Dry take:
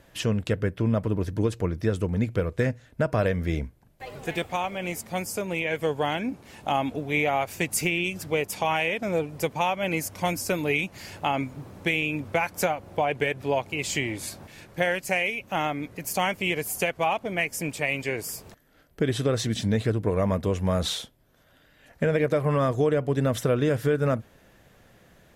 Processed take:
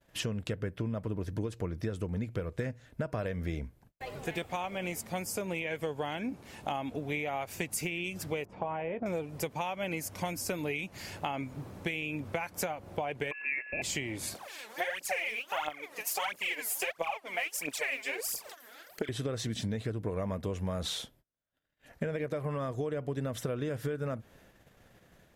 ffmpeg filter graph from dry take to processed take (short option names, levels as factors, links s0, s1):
-filter_complex "[0:a]asettb=1/sr,asplit=3[s0][s1][s2];[s0]atrim=end=8.454[s3];[s1]atrim=start=8.45:end=9.06,asetpts=PTS-STARTPTS,afade=t=in:d=0.004:c=qsin,afade=t=out:st=0.606:d=0.004:c=qsin,lowpass=1000,asplit=2[s4][s5];[s5]adelay=17,volume=0.224[s6];[s4][s6]amix=inputs=2:normalize=0,atrim=end_sample=26901[s7];[s2]atrim=start=9.056[s8];[s3][s7]acrossfade=d=0.004:c1=hsin:c2=qsin[s9];[s9][s8]acrossfade=d=0.004:c1=qsin:c2=hsin,asettb=1/sr,asplit=3[s10][s11][s12];[s10]atrim=end=13.314[s13];[s11]atrim=start=13.31:end=13.82,asetpts=PTS-STARTPTS,afade=t=in:d=0.004:c=qsin,afade=t=out:st=0.506:d=0.004:c=qsin,aeval=exprs='val(0)+0.0141*sin(2*PI*1100*n/s)':c=same,lowpass=f=2400:t=q:w=0.5098,lowpass=f=2400:t=q:w=0.6013,lowpass=f=2400:t=q:w=0.9,lowpass=f=2400:t=q:w=2.563,afreqshift=-2800[s14];[s12]atrim=start=13.816[s15];[s13][s14]acrossfade=d=0.004:c1=hsin:c2=qsin[s16];[s16][s15]acrossfade=d=0.004:c1=qsin:c2=hsin,asettb=1/sr,asplit=3[s17][s18][s19];[s17]atrim=end=14.354[s20];[s18]atrim=start=14.35:end=19.09,asetpts=PTS-STARTPTS,afade=t=in:d=0.004:c=qsin,afade=t=out:st=4.736:d=0.004:c=qsin,highpass=590,acompressor=mode=upward:threshold=0.00794:ratio=2.5:attack=3.2:release=140:knee=2.83:detection=peak,aphaser=in_gain=1:out_gain=1:delay=4.8:decay=0.8:speed=1.5:type=triangular[s21];[s19]atrim=start=19.086[s22];[s20][s21]acrossfade=d=0.004:c1=hsin:c2=qsin[s23];[s23][s22]acrossfade=d=0.004:c1=qsin:c2=hsin,agate=range=0.0251:threshold=0.00178:ratio=16:detection=peak,acompressor=threshold=0.0355:ratio=6,volume=0.794"